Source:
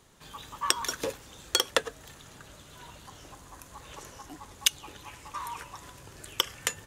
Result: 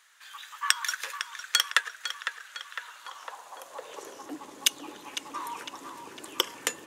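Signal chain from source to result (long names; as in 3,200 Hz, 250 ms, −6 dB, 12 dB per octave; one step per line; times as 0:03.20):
feedback echo with a low-pass in the loop 505 ms, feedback 63%, low-pass 4,000 Hz, level −8 dB
high-pass filter sweep 1,600 Hz → 290 Hz, 0:02.76–0:04.34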